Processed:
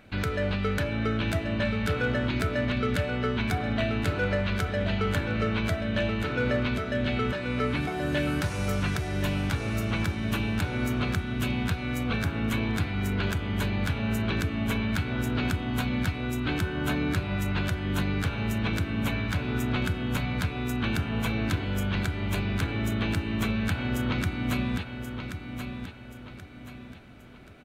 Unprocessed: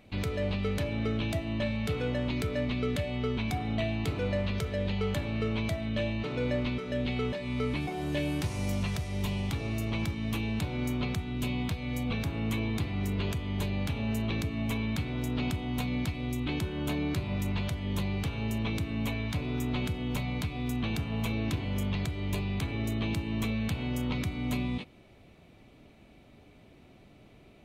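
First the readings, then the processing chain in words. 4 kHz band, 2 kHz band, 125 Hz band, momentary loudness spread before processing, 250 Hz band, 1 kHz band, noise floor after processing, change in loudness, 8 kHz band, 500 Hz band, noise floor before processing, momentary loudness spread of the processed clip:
+3.5 dB, +7.5 dB, +3.0 dB, 2 LU, +3.0 dB, +6.5 dB, −44 dBFS, +3.5 dB, +3.0 dB, +3.5 dB, −56 dBFS, 3 LU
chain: parametric band 1,500 Hz +14 dB 0.41 octaves
repeating echo 1,080 ms, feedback 38%, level −8 dB
hard clipping −20.5 dBFS, distortion −34 dB
level +2.5 dB

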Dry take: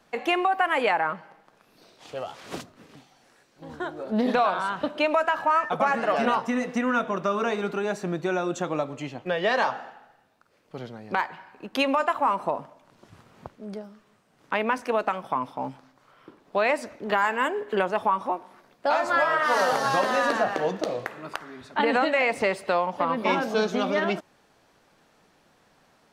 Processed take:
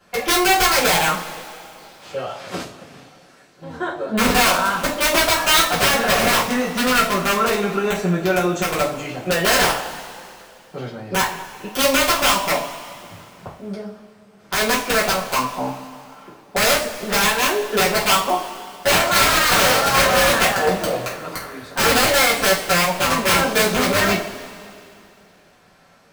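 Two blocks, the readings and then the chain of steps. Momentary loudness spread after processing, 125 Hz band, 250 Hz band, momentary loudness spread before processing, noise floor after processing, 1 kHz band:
17 LU, +11.5 dB, +5.5 dB, 14 LU, −51 dBFS, +5.0 dB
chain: wrap-around overflow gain 16.5 dB
coupled-rooms reverb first 0.33 s, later 2.6 s, from −19 dB, DRR −9 dB
level −1 dB

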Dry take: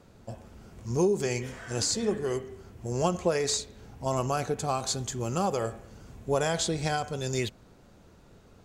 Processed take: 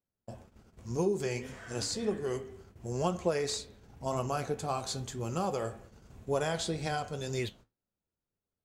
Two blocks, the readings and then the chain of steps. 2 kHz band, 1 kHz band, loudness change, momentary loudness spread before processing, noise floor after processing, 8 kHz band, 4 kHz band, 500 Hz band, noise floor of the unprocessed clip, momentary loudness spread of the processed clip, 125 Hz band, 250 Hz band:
−4.5 dB, −4.5 dB, −4.5 dB, 18 LU, below −85 dBFS, −8.0 dB, −5.5 dB, −4.0 dB, −56 dBFS, 17 LU, −4.5 dB, −4.5 dB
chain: noise gate −47 dBFS, range −33 dB
dynamic equaliser 6,700 Hz, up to −5 dB, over −45 dBFS, Q 2
flanger 1.9 Hz, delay 9.4 ms, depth 5 ms, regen −66%

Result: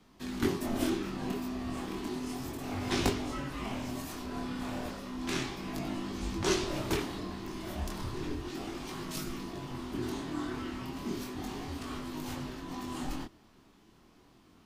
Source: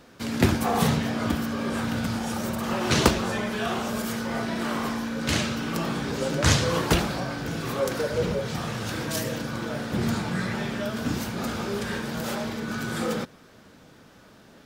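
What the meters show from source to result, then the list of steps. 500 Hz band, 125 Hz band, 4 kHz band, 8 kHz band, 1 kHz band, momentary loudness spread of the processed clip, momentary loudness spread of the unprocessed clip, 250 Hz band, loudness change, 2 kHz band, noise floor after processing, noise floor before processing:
−9.5 dB, −12.0 dB, −9.5 dB, −10.0 dB, −10.0 dB, 8 LU, 8 LU, −7.5 dB, −9.5 dB, −12.0 dB, −61 dBFS, −52 dBFS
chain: frequency shifter −480 Hz
chorus effect 0.33 Hz, delay 20 ms, depth 7.2 ms
level −6 dB

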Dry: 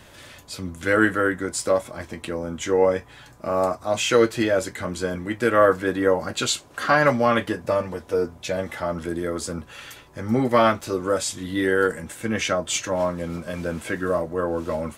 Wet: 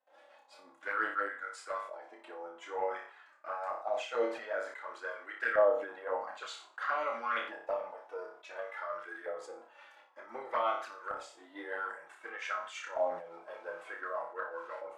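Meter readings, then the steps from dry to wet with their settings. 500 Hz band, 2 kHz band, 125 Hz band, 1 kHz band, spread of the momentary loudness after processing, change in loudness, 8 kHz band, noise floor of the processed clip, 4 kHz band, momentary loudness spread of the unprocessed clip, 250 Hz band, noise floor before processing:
−14.0 dB, −11.5 dB, below −40 dB, −10.5 dB, 14 LU, −14.0 dB, below −25 dB, −61 dBFS, −19.0 dB, 12 LU, −27.0 dB, −48 dBFS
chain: high-pass filter 460 Hz 12 dB per octave
noise gate with hold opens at −40 dBFS
parametric band 1,100 Hz −3.5 dB 0.4 octaves
auto-filter band-pass saw up 0.54 Hz 710–1,500 Hz
amplitude tremolo 5.7 Hz, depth 46%
flanger swept by the level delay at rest 3.9 ms, full sweep at −25 dBFS
flutter between parallel walls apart 5.1 metres, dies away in 0.36 s
level that may fall only so fast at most 100 dB per second

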